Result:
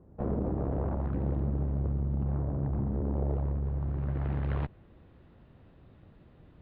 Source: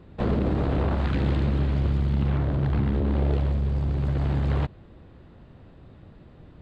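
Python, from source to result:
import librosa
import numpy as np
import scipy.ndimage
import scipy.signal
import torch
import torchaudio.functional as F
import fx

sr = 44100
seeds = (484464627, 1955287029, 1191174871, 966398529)

y = fx.filter_sweep_lowpass(x, sr, from_hz=800.0, to_hz=3500.0, start_s=3.13, end_s=5.03, q=0.94)
y = fx.cheby_harmonics(y, sr, harmonics=(6,), levels_db=(-22,), full_scale_db=-8.5)
y = y * 10.0 ** (-7.5 / 20.0)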